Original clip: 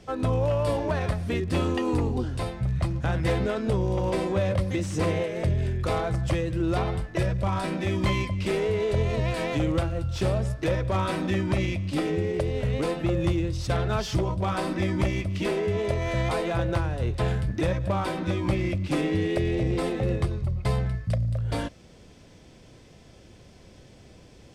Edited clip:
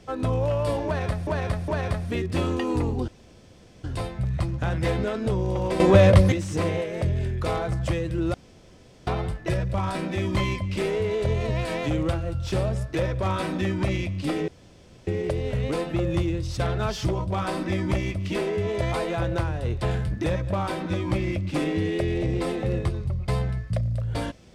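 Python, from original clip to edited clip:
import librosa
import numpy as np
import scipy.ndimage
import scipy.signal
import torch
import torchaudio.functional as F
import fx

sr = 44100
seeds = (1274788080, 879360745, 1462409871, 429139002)

y = fx.edit(x, sr, fx.repeat(start_s=0.86, length_s=0.41, count=3),
    fx.insert_room_tone(at_s=2.26, length_s=0.76),
    fx.clip_gain(start_s=4.22, length_s=0.52, db=10.5),
    fx.insert_room_tone(at_s=6.76, length_s=0.73),
    fx.insert_room_tone(at_s=12.17, length_s=0.59),
    fx.cut(start_s=15.92, length_s=0.27), tone=tone)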